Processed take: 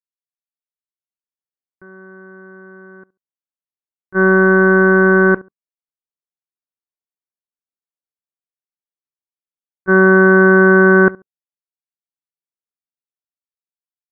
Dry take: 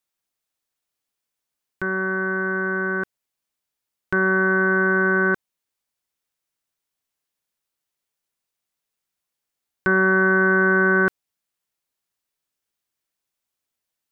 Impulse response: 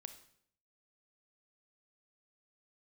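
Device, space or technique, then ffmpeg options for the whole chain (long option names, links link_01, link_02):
action camera in a waterproof case: -filter_complex "[0:a]agate=range=-31dB:threshold=-17dB:ratio=16:detection=peak,lowpass=frequency=1800:width=0.5412,lowpass=frequency=1800:width=1.3066,equalizer=frequency=310:width_type=o:width=3:gain=5,asplit=2[link_01][link_02];[link_02]adelay=69,lowpass=frequency=1200:poles=1,volume=-21dB,asplit=2[link_03][link_04];[link_04]adelay=69,lowpass=frequency=1200:poles=1,volume=0.23[link_05];[link_01][link_03][link_05]amix=inputs=3:normalize=0,dynaudnorm=framelen=360:gausssize=7:maxgain=14dB,volume=-1dB" -ar 24000 -c:a aac -b:a 48k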